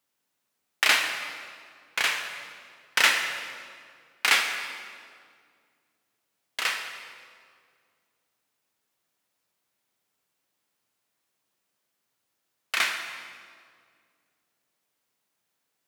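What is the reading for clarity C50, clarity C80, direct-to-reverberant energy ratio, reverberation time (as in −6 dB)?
6.0 dB, 6.5 dB, 4.0 dB, 2.1 s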